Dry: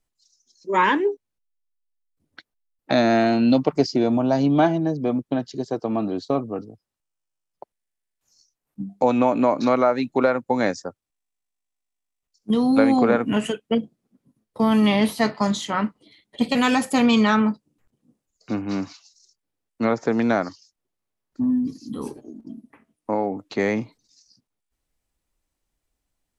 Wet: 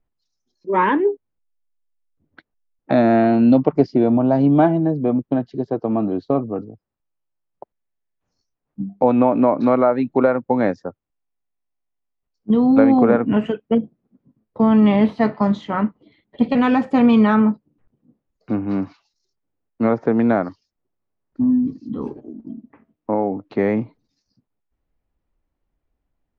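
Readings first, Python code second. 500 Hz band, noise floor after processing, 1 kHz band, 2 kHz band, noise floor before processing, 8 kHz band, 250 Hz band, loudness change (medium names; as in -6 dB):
+3.5 dB, -78 dBFS, +1.5 dB, -2.0 dB, -82 dBFS, under -20 dB, +4.5 dB, +3.5 dB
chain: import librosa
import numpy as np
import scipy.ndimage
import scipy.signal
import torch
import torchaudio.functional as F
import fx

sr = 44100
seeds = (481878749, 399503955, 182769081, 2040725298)

y = fx.spacing_loss(x, sr, db_at_10k=43)
y = y * 10.0 ** (5.5 / 20.0)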